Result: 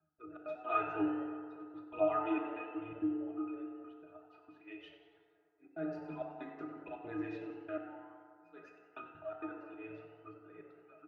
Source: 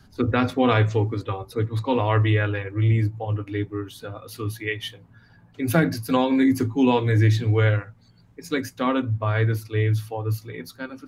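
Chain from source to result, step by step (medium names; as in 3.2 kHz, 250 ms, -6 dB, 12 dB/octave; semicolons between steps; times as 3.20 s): high-pass 740 Hz 12 dB/octave; gate -56 dBFS, range -10 dB; level-controlled noise filter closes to 1.8 kHz, open at -24.5 dBFS; treble shelf 2.3 kHz -9.5 dB; slow attack 155 ms; phaser 0.99 Hz, delay 4.8 ms, feedback 59%; pitch-class resonator D#, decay 0.18 s; trance gate "x.xx.x.xxxxx.." 164 bpm -60 dB; on a send: frequency-shifting echo 93 ms, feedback 53%, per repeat +130 Hz, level -14.5 dB; on the sum: FDN reverb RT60 2.3 s, low-frequency decay 0.7×, high-frequency decay 0.4×, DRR 2.5 dB; trim +8 dB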